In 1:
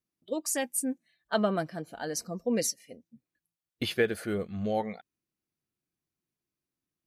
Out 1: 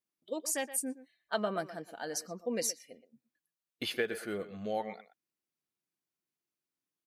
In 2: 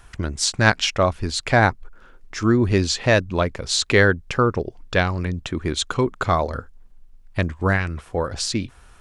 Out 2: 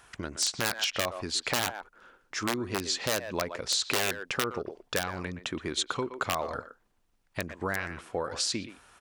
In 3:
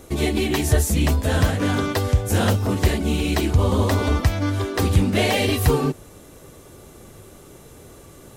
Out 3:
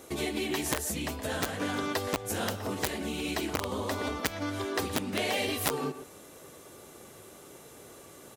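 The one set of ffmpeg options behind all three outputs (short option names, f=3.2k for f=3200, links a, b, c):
-filter_complex "[0:a]asplit=2[a][b];[b]adelay=120,highpass=300,lowpass=3.4k,asoftclip=type=hard:threshold=-10dB,volume=-13dB[c];[a][c]amix=inputs=2:normalize=0,aeval=exprs='(mod(2.66*val(0)+1,2)-1)/2.66':c=same,acompressor=threshold=-22dB:ratio=6,highpass=f=360:p=1,volume=-2.5dB"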